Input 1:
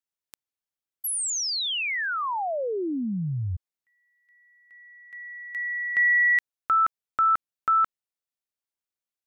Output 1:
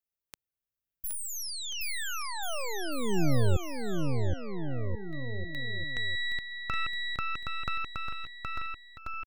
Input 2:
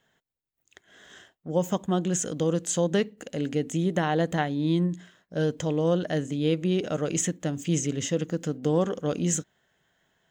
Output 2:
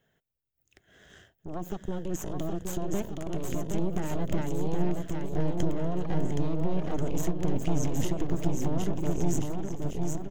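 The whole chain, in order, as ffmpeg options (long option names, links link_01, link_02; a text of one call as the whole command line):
ffmpeg -i in.wav -af "equalizer=frequency=250:width_type=o:width=1:gain=-4,equalizer=frequency=1000:width_type=o:width=1:gain=-10,equalizer=frequency=2000:width_type=o:width=1:gain=-4,equalizer=frequency=4000:width_type=o:width=1:gain=-8,equalizer=frequency=8000:width_type=o:width=1:gain=-9,acompressor=threshold=-41dB:ratio=3:attack=1.1:release=92:knee=6:detection=rms,asubboost=boost=5.5:cutoff=160,aeval=exprs='0.0631*(cos(1*acos(clip(val(0)/0.0631,-1,1)))-cos(1*PI/2))+0.0282*(cos(2*acos(clip(val(0)/0.0631,-1,1)))-cos(2*PI/2))+0.00141*(cos(5*acos(clip(val(0)/0.0631,-1,1)))-cos(5*PI/2))+0.0251*(cos(6*acos(clip(val(0)/0.0631,-1,1)))-cos(6*PI/2))':channel_layout=same,aecho=1:1:770|1386|1879|2273|2588:0.631|0.398|0.251|0.158|0.1,volume=2dB" out.wav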